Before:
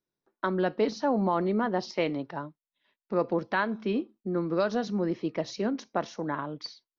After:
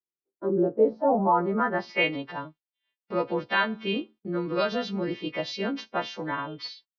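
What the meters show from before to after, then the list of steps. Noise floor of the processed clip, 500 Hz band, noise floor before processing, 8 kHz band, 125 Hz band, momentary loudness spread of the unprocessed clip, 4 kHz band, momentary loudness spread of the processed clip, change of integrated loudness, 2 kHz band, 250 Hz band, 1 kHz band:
under -85 dBFS, +2.0 dB, under -85 dBFS, no reading, -0.5 dB, 8 LU, +7.0 dB, 11 LU, +2.5 dB, +5.5 dB, -0.5 dB, +4.0 dB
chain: partials quantised in pitch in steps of 2 st; gate -51 dBFS, range -18 dB; low-pass sweep 430 Hz -> 3.1 kHz, 0.69–2.19 s

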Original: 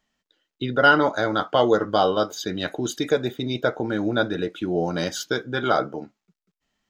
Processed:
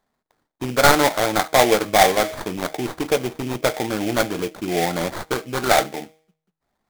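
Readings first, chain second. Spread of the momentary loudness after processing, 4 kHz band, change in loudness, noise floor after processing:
12 LU, +4.5 dB, +3.0 dB, -81 dBFS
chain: tracing distortion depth 0.14 ms; peaking EQ 760 Hz +8.5 dB 0.59 oct; de-hum 158 Hz, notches 7; sample-rate reducer 2.8 kHz, jitter 20%

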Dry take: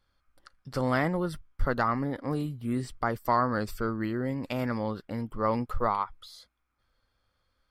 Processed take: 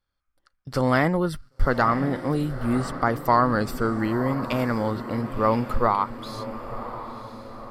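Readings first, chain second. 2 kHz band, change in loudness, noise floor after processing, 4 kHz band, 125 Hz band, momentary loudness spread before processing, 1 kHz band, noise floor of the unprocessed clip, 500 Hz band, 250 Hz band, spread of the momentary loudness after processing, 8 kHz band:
+6.5 dB, +6.0 dB, -74 dBFS, +6.5 dB, +6.5 dB, 9 LU, +6.5 dB, -76 dBFS, +6.5 dB, +6.5 dB, 14 LU, +6.5 dB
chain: echo that smears into a reverb 1010 ms, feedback 50%, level -11.5 dB; gate -47 dBFS, range -14 dB; trim +6 dB

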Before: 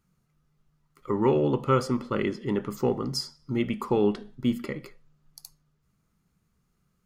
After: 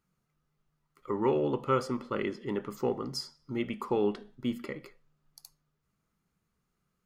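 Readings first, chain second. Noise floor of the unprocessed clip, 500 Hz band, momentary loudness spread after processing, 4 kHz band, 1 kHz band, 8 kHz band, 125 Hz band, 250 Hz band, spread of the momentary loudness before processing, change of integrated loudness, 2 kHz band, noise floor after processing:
-73 dBFS, -4.0 dB, 10 LU, -5.5 dB, -3.5 dB, -6.0 dB, -9.0 dB, -6.0 dB, 9 LU, -5.0 dB, -3.5 dB, -80 dBFS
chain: tone controls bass -6 dB, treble -3 dB; trim -3.5 dB

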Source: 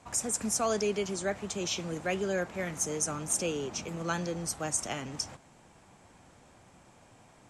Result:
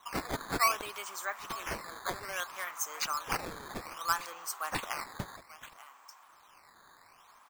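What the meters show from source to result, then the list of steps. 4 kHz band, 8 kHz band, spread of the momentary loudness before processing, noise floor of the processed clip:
-1.5 dB, -8.5 dB, 7 LU, -60 dBFS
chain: resonant high-pass 1.1 kHz, resonance Q 4.6; delay 890 ms -16 dB; decimation with a swept rate 9×, swing 160% 0.62 Hz; trim -3.5 dB

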